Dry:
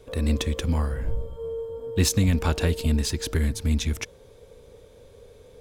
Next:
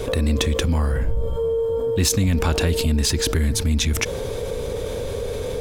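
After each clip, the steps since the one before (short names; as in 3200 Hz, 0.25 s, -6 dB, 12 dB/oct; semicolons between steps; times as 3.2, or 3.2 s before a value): fast leveller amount 70%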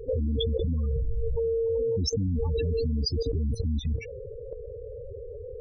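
loudest bins only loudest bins 8; level quantiser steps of 13 dB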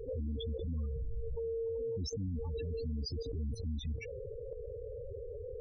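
limiter -28 dBFS, peak gain reduction 10.5 dB; gain -4 dB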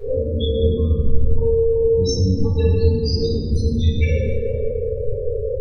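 reverb RT60 2.1 s, pre-delay 4 ms, DRR -11.5 dB; gain +6.5 dB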